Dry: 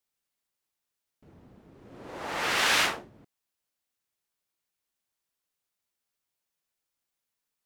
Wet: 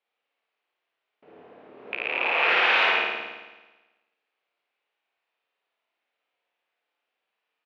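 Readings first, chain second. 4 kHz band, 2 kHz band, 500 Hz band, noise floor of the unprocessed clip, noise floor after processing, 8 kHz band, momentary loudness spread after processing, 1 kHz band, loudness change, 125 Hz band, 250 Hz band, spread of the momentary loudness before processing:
+2.0 dB, +7.0 dB, +6.5 dB, below −85 dBFS, −83 dBFS, below −20 dB, 16 LU, +5.5 dB, +3.5 dB, below −10 dB, −1.0 dB, 18 LU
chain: loose part that buzzes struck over −48 dBFS, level −18 dBFS
brickwall limiter −21.5 dBFS, peak gain reduction 9.5 dB
loudspeaker in its box 420–3,200 Hz, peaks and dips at 460 Hz +5 dB, 710 Hz +4 dB, 2,500 Hz +4 dB
double-tracking delay 31 ms −8 dB
flutter between parallel walls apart 9.4 metres, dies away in 1.2 s
level +6 dB

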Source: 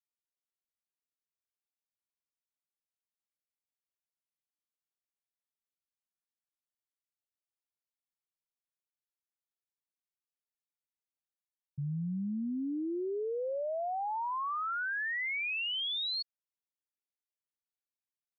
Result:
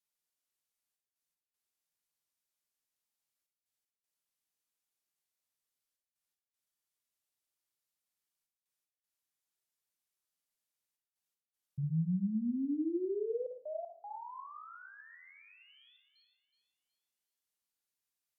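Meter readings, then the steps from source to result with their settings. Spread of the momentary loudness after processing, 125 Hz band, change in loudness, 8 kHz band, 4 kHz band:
19 LU, +2.5 dB, −2.5 dB, can't be measured, below −30 dB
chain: treble cut that deepens with the level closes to 450 Hz, closed at −34.5 dBFS
high-shelf EQ 3,400 Hz +6.5 dB
gate pattern "xxxxx.x.xxxxx" 78 BPM −60 dB
on a send: delay with a high-pass on its return 370 ms, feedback 33%, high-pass 2,800 Hz, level −10 dB
on the sum: four-comb reverb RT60 0.47 s, DRR 3.5 dB

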